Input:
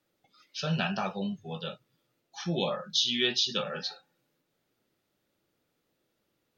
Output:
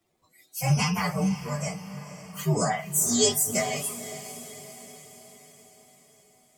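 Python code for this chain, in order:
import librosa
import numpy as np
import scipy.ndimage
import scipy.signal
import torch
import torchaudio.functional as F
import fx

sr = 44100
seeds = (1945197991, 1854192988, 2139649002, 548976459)

y = fx.partial_stretch(x, sr, pct=129)
y = fx.echo_diffused(y, sr, ms=506, feedback_pct=54, wet_db=-13.0)
y = y * librosa.db_to_amplitude(8.5)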